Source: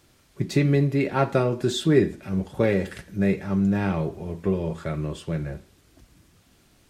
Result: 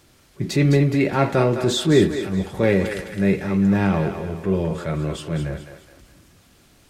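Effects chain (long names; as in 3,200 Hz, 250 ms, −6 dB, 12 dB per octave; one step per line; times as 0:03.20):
transient designer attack −5 dB, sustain +2 dB
feedback echo with a high-pass in the loop 210 ms, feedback 42%, high-pass 430 Hz, level −7.5 dB
level +4.5 dB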